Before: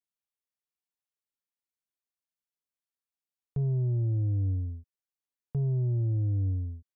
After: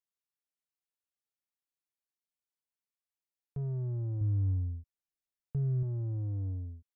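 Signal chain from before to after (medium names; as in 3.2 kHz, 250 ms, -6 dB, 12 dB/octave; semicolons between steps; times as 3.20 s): 4.21–5.83 s: bass shelf 130 Hz +9.5 dB; in parallel at -9 dB: saturation -34 dBFS, distortion -7 dB; on the sum: trim -8 dB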